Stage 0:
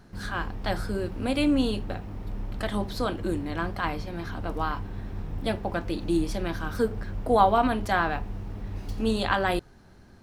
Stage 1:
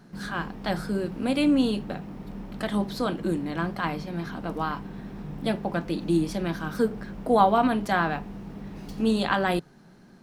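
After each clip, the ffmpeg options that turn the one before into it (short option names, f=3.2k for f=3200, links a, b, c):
-af "lowshelf=f=120:t=q:w=3:g=-9.5"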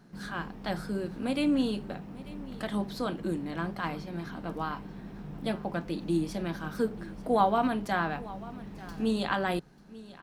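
-af "aecho=1:1:891:0.119,volume=-5dB"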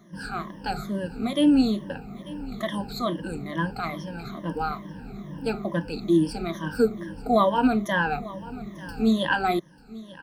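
-af "afftfilt=real='re*pow(10,22/40*sin(2*PI*(1.2*log(max(b,1)*sr/1024/100)/log(2)-(-2.3)*(pts-256)/sr)))':imag='im*pow(10,22/40*sin(2*PI*(1.2*log(max(b,1)*sr/1024/100)/log(2)-(-2.3)*(pts-256)/sr)))':win_size=1024:overlap=0.75"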